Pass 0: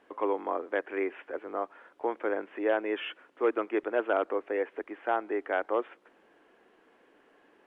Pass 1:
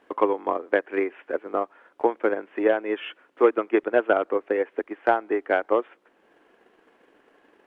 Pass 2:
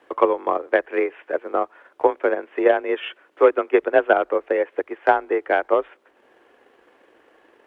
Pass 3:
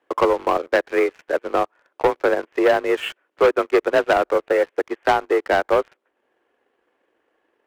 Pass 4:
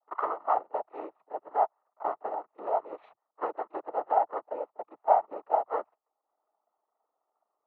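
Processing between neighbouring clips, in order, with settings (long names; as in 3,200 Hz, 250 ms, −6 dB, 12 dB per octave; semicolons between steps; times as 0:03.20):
transient designer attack +9 dB, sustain −3 dB; level +2.5 dB
in parallel at −2 dB: output level in coarse steps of 9 dB; on the sum: frequency shifter +36 Hz
leveller curve on the samples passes 3; level −7 dB
formant resonators in series a; echo ahead of the sound 35 ms −22.5 dB; cochlear-implant simulation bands 12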